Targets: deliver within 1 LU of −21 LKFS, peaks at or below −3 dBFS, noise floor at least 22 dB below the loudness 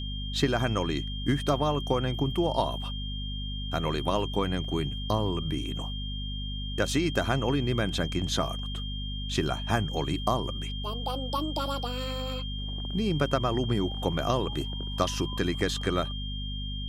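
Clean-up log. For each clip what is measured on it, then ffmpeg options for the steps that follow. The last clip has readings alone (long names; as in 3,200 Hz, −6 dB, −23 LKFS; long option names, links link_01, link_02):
mains hum 50 Hz; hum harmonics up to 250 Hz; level of the hum −32 dBFS; interfering tone 3,200 Hz; level of the tone −38 dBFS; integrated loudness −29.5 LKFS; sample peak −10.0 dBFS; target loudness −21.0 LKFS
→ -af "bandreject=frequency=50:width_type=h:width=6,bandreject=frequency=100:width_type=h:width=6,bandreject=frequency=150:width_type=h:width=6,bandreject=frequency=200:width_type=h:width=6,bandreject=frequency=250:width_type=h:width=6"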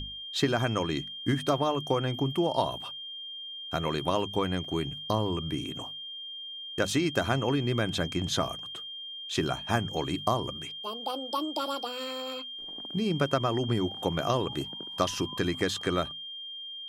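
mains hum none found; interfering tone 3,200 Hz; level of the tone −38 dBFS
→ -af "bandreject=frequency=3200:width=30"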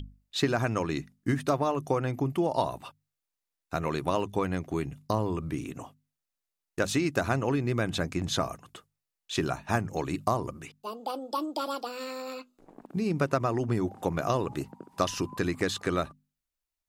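interfering tone none found; integrated loudness −30.5 LKFS; sample peak −11.0 dBFS; target loudness −21.0 LKFS
→ -af "volume=9.5dB,alimiter=limit=-3dB:level=0:latency=1"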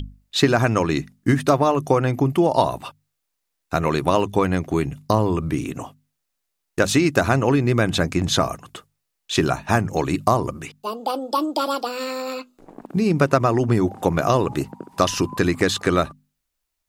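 integrated loudness −21.0 LKFS; sample peak −3.0 dBFS; background noise floor −78 dBFS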